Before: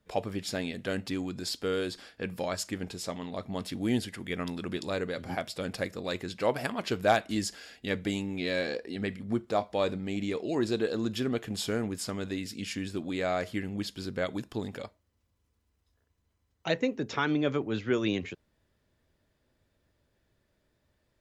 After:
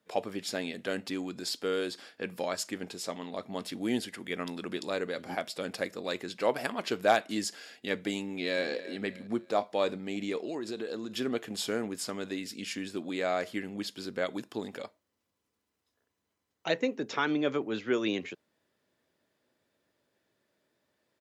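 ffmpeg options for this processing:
-filter_complex "[0:a]asplit=2[a][b];[b]afade=t=in:st=8.26:d=0.01,afade=t=out:st=8.67:d=0.01,aecho=0:1:300|600|900:0.177828|0.0622398|0.0217839[c];[a][c]amix=inputs=2:normalize=0,asettb=1/sr,asplit=3[d][e][f];[d]atrim=end=10.414[g];[e]atrim=start=10.41:end=11.13,asetpts=PTS-STARTPTS,afade=t=in:d=0.004:c=qsin,afade=t=out:st=0.716:d=0.004:c=qsin,acompressor=threshold=-31dB:ratio=6:attack=3.2:release=140:knee=1:detection=peak[h];[f]atrim=start=11.126[i];[g][h]acrossfade=d=0.004:c1=hsin:c2=qsin[j];[j][i]acrossfade=d=0.004:c1=qsin:c2=hsin,highpass=230"

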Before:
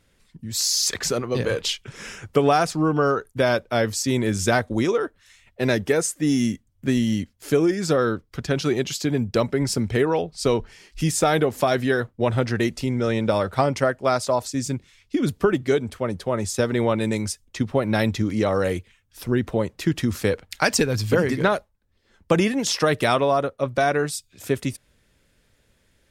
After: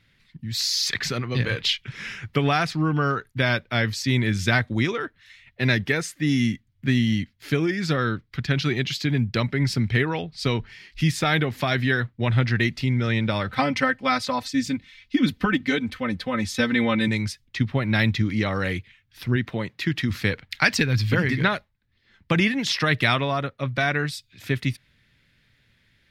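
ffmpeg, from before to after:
-filter_complex "[0:a]asettb=1/sr,asplit=3[a][b][c];[a]atrim=end=13.494[d];[b]atrim=start=13.49:end=17.08,asetpts=PTS-STARTPTS,afade=t=in:d=0.004:c=qsin,afade=t=out:st=3.586:d=0.004:c=qsin,aecho=1:1:3.9:0.9,atrim=end_sample=158319[e];[c]atrim=start=17.076[f];[d][e]acrossfade=d=0.004:c1=hsin:c2=qsin[g];[g][f]acrossfade=d=0.004:c1=qsin:c2=hsin,asettb=1/sr,asplit=3[h][i][j];[h]atrim=end=19.364[k];[i]atrim=start=19.36:end=20.1,asetpts=PTS-STARTPTS,afade=t=in:d=0.004:c=qsin,afade=t=out:st=0.736:d=0.004:c=qsin,highpass=f=180:p=1[l];[j]atrim=start=20.096[m];[k][l]acrossfade=d=0.004:c1=hsin:c2=qsin[n];[n][m]acrossfade=d=0.004:c1=qsin:c2=hsin,equalizer=f=125:t=o:w=1:g=10,equalizer=f=250:t=o:w=1:g=3,equalizer=f=500:t=o:w=1:g=-5,equalizer=f=2k:t=o:w=1:g=11,equalizer=f=4k:t=o:w=1:g=9,equalizer=f=8k:t=o:w=1:g=-8,volume=-5.5dB"

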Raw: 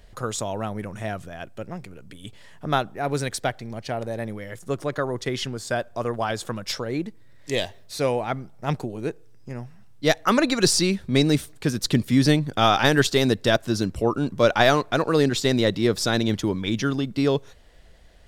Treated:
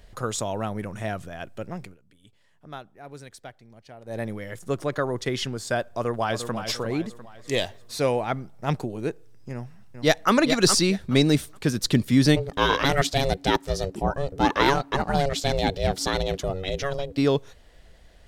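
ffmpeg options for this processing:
-filter_complex "[0:a]asplit=2[a][b];[b]afade=t=in:st=5.93:d=0.01,afade=t=out:st=6.55:d=0.01,aecho=0:1:350|700|1050|1400|1750:0.354813|0.159666|0.0718497|0.0323324|0.0145496[c];[a][c]amix=inputs=2:normalize=0,asplit=2[d][e];[e]afade=t=in:st=9.52:d=0.01,afade=t=out:st=10.32:d=0.01,aecho=0:1:420|840|1260:0.421697|0.0843393|0.0168679[f];[d][f]amix=inputs=2:normalize=0,asplit=3[g][h][i];[g]afade=t=out:st=12.35:d=0.02[j];[h]aeval=exprs='val(0)*sin(2*PI*280*n/s)':c=same,afade=t=in:st=12.35:d=0.02,afade=t=out:st=17.16:d=0.02[k];[i]afade=t=in:st=17.16:d=0.02[l];[j][k][l]amix=inputs=3:normalize=0,asplit=3[m][n][o];[m]atrim=end=1.97,asetpts=PTS-STARTPTS,afade=t=out:st=1.85:d=0.12:silence=0.149624[p];[n]atrim=start=1.97:end=4.05,asetpts=PTS-STARTPTS,volume=-16.5dB[q];[o]atrim=start=4.05,asetpts=PTS-STARTPTS,afade=t=in:d=0.12:silence=0.149624[r];[p][q][r]concat=n=3:v=0:a=1"

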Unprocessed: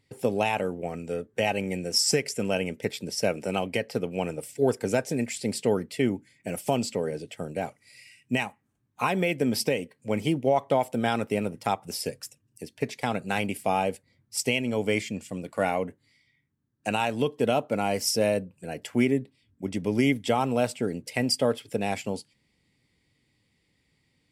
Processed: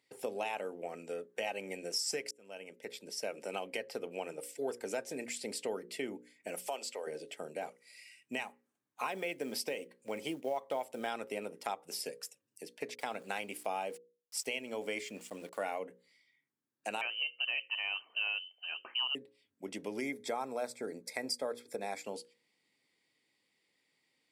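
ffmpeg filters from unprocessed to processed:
-filter_complex "[0:a]asettb=1/sr,asplit=3[a][b][c];[a]atrim=end=6.584[d];[b]atrim=start=6.58:end=7.07,asetpts=PTS-STARTPTS,afade=t=in:d=0.004:c=qsin,afade=t=out:st=0.486:d=0.004:c=qsin,highpass=550[e];[c]atrim=start=7.066[f];[d][e]acrossfade=d=0.004:c1=hsin:c2=qsin[g];[g][f]acrossfade=d=0.004:c1=qsin:c2=hsin,asettb=1/sr,asplit=3[h][i][j];[h]atrim=end=8.444[k];[i]atrim=start=8.44:end=11.12,asetpts=PTS-STARTPTS,afade=t=in:d=0.004:c=qsin,afade=t=out:st=2.676:d=0.004:c=qsin,acrusher=bits=8:mode=log:mix=0:aa=0.000001[l];[j]atrim=start=11.116[m];[k][l]acrossfade=d=0.004:c1=hsin:c2=qsin[n];[n][m]acrossfade=d=0.004:c1=qsin:c2=hsin,asettb=1/sr,asplit=3[o][p][q];[o]atrim=end=12.954[r];[p]atrim=start=12.95:end=15.79,asetpts=PTS-STARTPTS,afade=t=in:d=0.004:c=qsin,afade=t=out:st=2.836:d=0.004:c=qsin,aeval=exprs='val(0)*gte(abs(val(0)),0.00355)':c=same[s];[q]atrim=start=15.786[t];[r][s]acrossfade=d=0.004:c1=hsin:c2=qsin[u];[u][t]acrossfade=d=0.004:c1=qsin:c2=hsin,asettb=1/sr,asplit=3[v][w][x];[v]atrim=end=17.014[y];[w]atrim=start=17.01:end=19.15,asetpts=PTS-STARTPTS,afade=t=in:d=0.004:c=qsin,afade=t=out:st=2.136:d=0.004:c=qsin,lowpass=f=2.7k:t=q:w=0.5098,lowpass=f=2.7k:t=q:w=0.6013,lowpass=f=2.7k:t=q:w=0.9,lowpass=f=2.7k:t=q:w=2.563,afreqshift=-3200[z];[x]atrim=start=19.146[aa];[y][z]acrossfade=d=0.004:c1=hsin:c2=qsin[ab];[ab][aa]acrossfade=d=0.004:c1=qsin:c2=hsin,asettb=1/sr,asplit=3[ac][ad][ae];[ac]atrim=end=20.014[af];[ad]atrim=start=20.01:end=22.04,asetpts=PTS-STARTPTS,afade=t=in:d=0.004:c=qsin,afade=t=out:st=2.026:d=0.004:c=qsin,asuperstop=centerf=2900:order=4:qfactor=2.9[ag];[ae]atrim=start=22.036[ah];[af][ag]acrossfade=d=0.004:c1=hsin:c2=qsin[ai];[ai][ah]acrossfade=d=0.004:c1=qsin:c2=hsin,asplit=2[aj][ak];[aj]atrim=end=2.31,asetpts=PTS-STARTPTS,afade=t=out:st=2.306:d=0.004:c=hsin[al];[ak]atrim=start=2.31,asetpts=PTS-STARTPTS,afade=t=in:d=1.32[am];[al][am]concat=n=2:v=0:a=1,highpass=370,bandreject=f=60:t=h:w=6,bandreject=f=120:t=h:w=6,bandreject=f=180:t=h:w=6,bandreject=f=240:t=h:w=6,bandreject=f=300:t=h:w=6,bandreject=f=360:t=h:w=6,bandreject=f=420:t=h:w=6,bandreject=f=480:t=h:w=6,bandreject=f=540:t=h:w=6,acompressor=threshold=-34dB:ratio=2,volume=-4dB"

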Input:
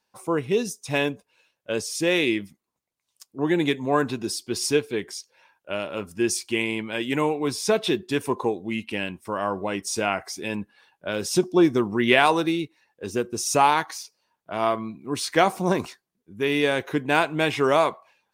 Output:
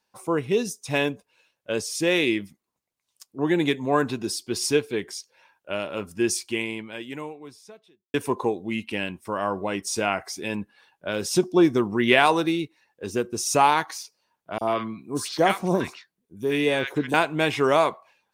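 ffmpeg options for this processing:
-filter_complex "[0:a]asettb=1/sr,asplit=3[a][b][c];[a]atrim=end=14.584[d];[b]atrim=start=14.58:end=17.14,asetpts=PTS-STARTPTS,afade=t=in:d=0.004:c=qsin,afade=t=out:st=2.556:d=0.004:c=qsin,acrossover=split=1200|5100[e][f][g];[e]adelay=30[h];[f]adelay=90[i];[h][i][g]amix=inputs=3:normalize=0,atrim=end_sample=112896[j];[c]atrim=start=17.136[k];[d][j]acrossfade=d=0.004:c1=hsin:c2=qsin[l];[l][k]acrossfade=d=0.004:c1=qsin:c2=hsin,asplit=2[m][n];[m]atrim=end=8.14,asetpts=PTS-STARTPTS,afade=t=out:st=6.32:d=1.82:c=qua[o];[n]atrim=start=8.14,asetpts=PTS-STARTPTS,afade=t=in:d=0.004:c=hsin[p];[o][p]concat=n=2:v=0:a=1"

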